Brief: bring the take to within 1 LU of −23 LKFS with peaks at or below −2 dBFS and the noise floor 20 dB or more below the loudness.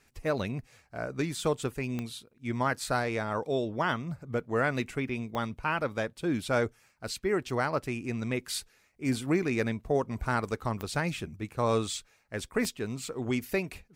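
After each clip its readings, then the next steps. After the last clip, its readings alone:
number of clicks 4; integrated loudness −32.0 LKFS; sample peak −16.0 dBFS; target loudness −23.0 LKFS
→ click removal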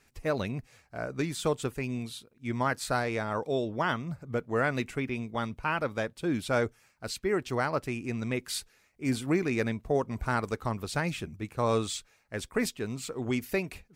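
number of clicks 0; integrated loudness −32.0 LKFS; sample peak −16.0 dBFS; target loudness −23.0 LKFS
→ level +9 dB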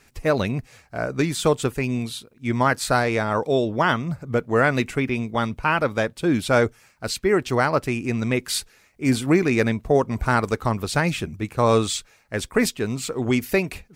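integrated loudness −23.0 LKFS; sample peak −7.0 dBFS; background noise floor −57 dBFS

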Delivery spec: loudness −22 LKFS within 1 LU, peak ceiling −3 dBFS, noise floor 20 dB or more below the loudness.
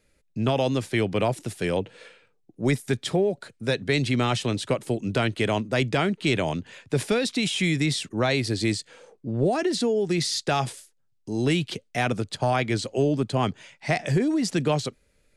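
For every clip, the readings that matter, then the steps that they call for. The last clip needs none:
integrated loudness −25.5 LKFS; sample peak −12.5 dBFS; target loudness −22.0 LKFS
→ level +3.5 dB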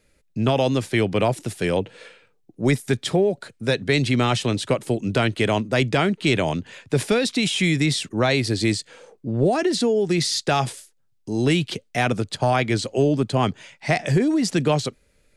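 integrated loudness −22.0 LKFS; sample peak −9.0 dBFS; background noise floor −64 dBFS

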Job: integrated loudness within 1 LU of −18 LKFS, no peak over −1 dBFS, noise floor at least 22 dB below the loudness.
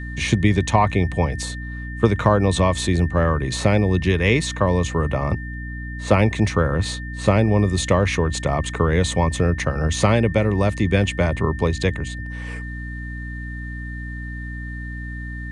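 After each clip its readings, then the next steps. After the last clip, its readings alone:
mains hum 60 Hz; hum harmonics up to 300 Hz; level of the hum −29 dBFS; interfering tone 1,800 Hz; level of the tone −35 dBFS; integrated loudness −20.5 LKFS; sample peak −2.0 dBFS; target loudness −18.0 LKFS
→ hum removal 60 Hz, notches 5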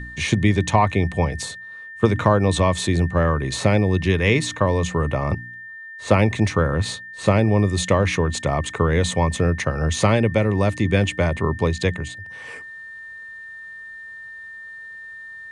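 mains hum none found; interfering tone 1,800 Hz; level of the tone −35 dBFS
→ notch filter 1,800 Hz, Q 30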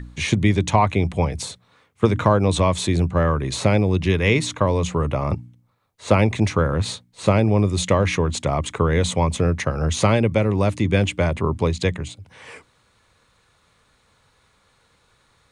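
interfering tone none found; integrated loudness −20.5 LKFS; sample peak −2.5 dBFS; target loudness −18.0 LKFS
→ level +2.5 dB
brickwall limiter −1 dBFS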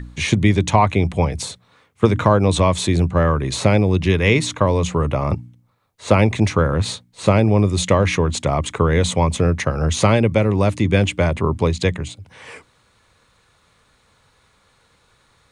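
integrated loudness −18.0 LKFS; sample peak −1.0 dBFS; background noise floor −59 dBFS

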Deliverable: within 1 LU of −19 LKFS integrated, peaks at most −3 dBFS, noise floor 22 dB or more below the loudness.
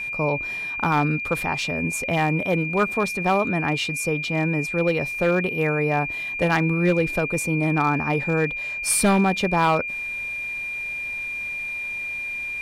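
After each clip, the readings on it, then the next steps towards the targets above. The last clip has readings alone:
share of clipped samples 0.5%; peaks flattened at −12.0 dBFS; interfering tone 2,400 Hz; level of the tone −27 dBFS; integrated loudness −23.0 LKFS; sample peak −12.0 dBFS; target loudness −19.0 LKFS
→ clipped peaks rebuilt −12 dBFS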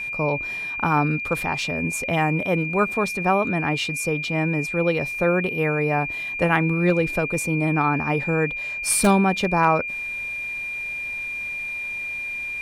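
share of clipped samples 0.0%; interfering tone 2,400 Hz; level of the tone −27 dBFS
→ notch filter 2,400 Hz, Q 30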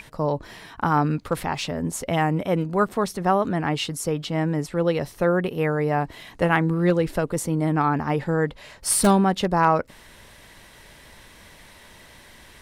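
interfering tone none found; integrated loudness −23.5 LKFS; sample peak −4.0 dBFS; target loudness −19.0 LKFS
→ level +4.5 dB
brickwall limiter −3 dBFS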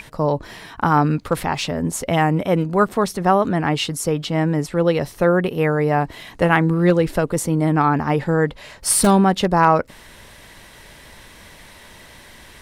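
integrated loudness −19.0 LKFS; sample peak −3.0 dBFS; background noise floor −44 dBFS

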